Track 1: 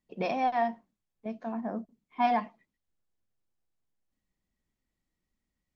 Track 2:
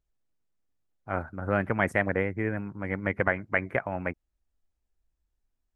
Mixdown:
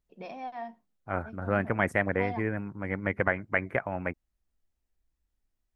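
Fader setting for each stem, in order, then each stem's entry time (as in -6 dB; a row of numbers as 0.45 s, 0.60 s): -11.0 dB, -1.0 dB; 0.00 s, 0.00 s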